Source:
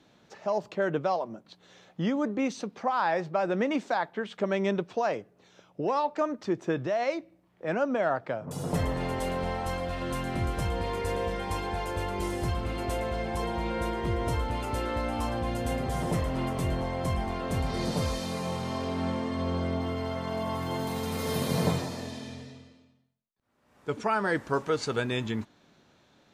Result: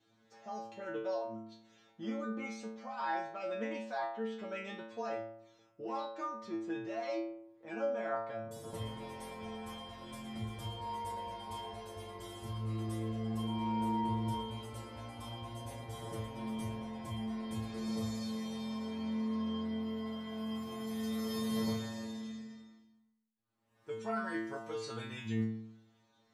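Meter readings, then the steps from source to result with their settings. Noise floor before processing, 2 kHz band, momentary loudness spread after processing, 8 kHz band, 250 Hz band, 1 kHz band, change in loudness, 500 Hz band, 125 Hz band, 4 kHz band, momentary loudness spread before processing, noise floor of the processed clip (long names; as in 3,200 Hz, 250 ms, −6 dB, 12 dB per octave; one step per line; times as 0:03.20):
−64 dBFS, −11.0 dB, 11 LU, −10.0 dB, −6.0 dB, −9.5 dB, −9.0 dB, −11.0 dB, −10.0 dB, −7.5 dB, 6 LU, −71 dBFS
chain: healed spectral selection 0:17.61–0:18.16, 1,500–4,500 Hz both
stiff-string resonator 110 Hz, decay 0.82 s, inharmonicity 0.002
level +4.5 dB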